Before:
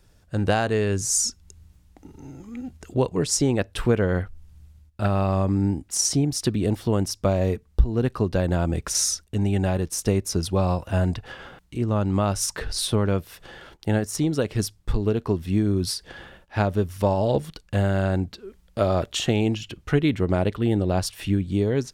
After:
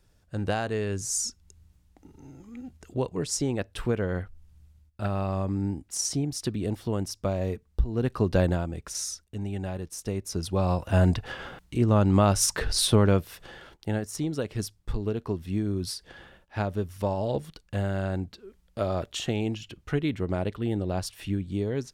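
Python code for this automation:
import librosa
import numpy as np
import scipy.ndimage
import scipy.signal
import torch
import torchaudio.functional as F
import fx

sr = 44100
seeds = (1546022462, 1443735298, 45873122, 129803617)

y = fx.gain(x, sr, db=fx.line((7.8, -6.5), (8.43, 1.0), (8.7, -10.0), (10.06, -10.0), (11.06, 2.0), (13.06, 2.0), (13.95, -6.5)))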